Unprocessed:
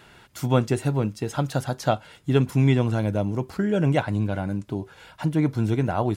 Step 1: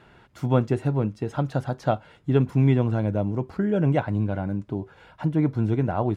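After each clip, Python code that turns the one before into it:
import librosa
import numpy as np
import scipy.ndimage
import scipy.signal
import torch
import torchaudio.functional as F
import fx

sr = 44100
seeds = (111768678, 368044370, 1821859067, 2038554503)

y = fx.lowpass(x, sr, hz=1400.0, slope=6)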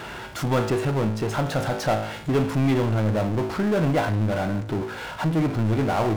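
y = fx.low_shelf(x, sr, hz=350.0, db=-7.0)
y = fx.comb_fb(y, sr, f0_hz=54.0, decay_s=0.41, harmonics='all', damping=0.0, mix_pct=70)
y = fx.power_curve(y, sr, exponent=0.5)
y = y * 10.0 ** (3.5 / 20.0)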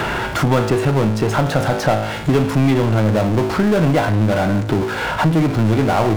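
y = fx.band_squash(x, sr, depth_pct=70)
y = y * 10.0 ** (6.5 / 20.0)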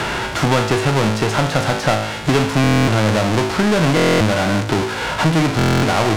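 y = fx.envelope_flatten(x, sr, power=0.6)
y = fx.air_absorb(y, sr, metres=54.0)
y = fx.buffer_glitch(y, sr, at_s=(2.62, 3.95, 5.57), block=1024, repeats=10)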